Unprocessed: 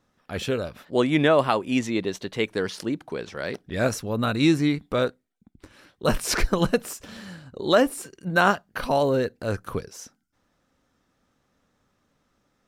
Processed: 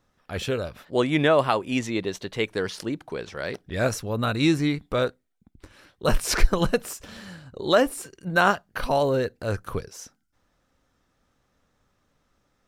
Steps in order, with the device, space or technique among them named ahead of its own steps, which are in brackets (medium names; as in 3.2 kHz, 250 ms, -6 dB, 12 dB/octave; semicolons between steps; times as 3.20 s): low shelf boost with a cut just above (bass shelf 63 Hz +7.5 dB; peaking EQ 230 Hz -3.5 dB 1.1 oct)